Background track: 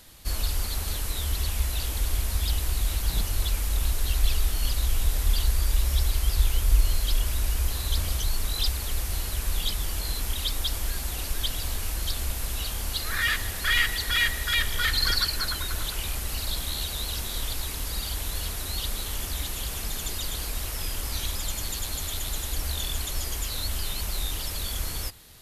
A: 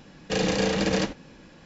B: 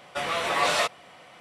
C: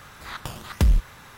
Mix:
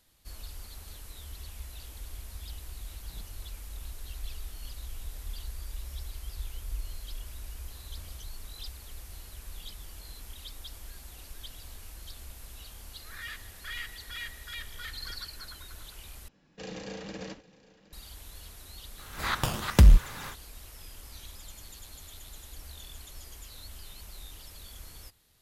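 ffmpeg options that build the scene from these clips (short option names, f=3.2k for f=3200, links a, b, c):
-filter_complex "[0:a]volume=-16dB[a];[1:a]aecho=1:1:766:0.1[b];[3:a]dynaudnorm=f=130:g=3:m=15dB[c];[a]asplit=2[d][e];[d]atrim=end=16.284[f];[b]atrim=end=1.65,asetpts=PTS-STARTPTS,volume=-16.5dB[g];[e]atrim=start=17.926[h];[c]atrim=end=1.37,asetpts=PTS-STARTPTS,volume=-7dB,afade=t=in:d=0.004:c=hsin,afade=t=out:st=1.366:d=0.004:c=hsin,adelay=18980[i];[f][g]acrossfade=d=0.004:c1=hsin:c2=hsin[j];[j][h]acrossfade=d=0.004:c1=hsin:c2=hsin[k];[k][i]amix=inputs=2:normalize=0"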